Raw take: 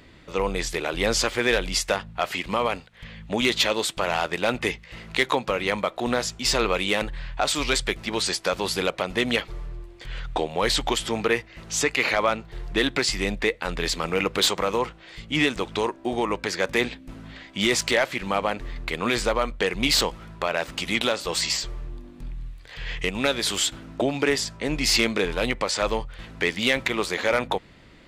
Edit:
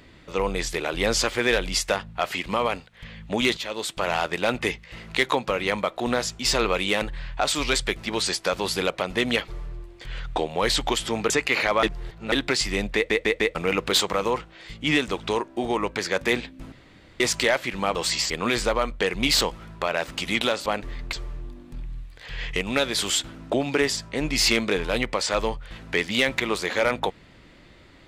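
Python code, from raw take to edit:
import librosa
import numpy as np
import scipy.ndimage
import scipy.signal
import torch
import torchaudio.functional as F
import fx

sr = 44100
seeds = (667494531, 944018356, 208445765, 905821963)

y = fx.edit(x, sr, fx.fade_in_from(start_s=3.57, length_s=0.5, floor_db=-14.5),
    fx.cut(start_s=11.3, length_s=0.48),
    fx.reverse_span(start_s=12.31, length_s=0.49),
    fx.stutter_over(start_s=13.43, slice_s=0.15, count=4),
    fx.room_tone_fill(start_s=17.2, length_s=0.48),
    fx.swap(start_s=18.43, length_s=0.47, other_s=21.26, other_length_s=0.35), tone=tone)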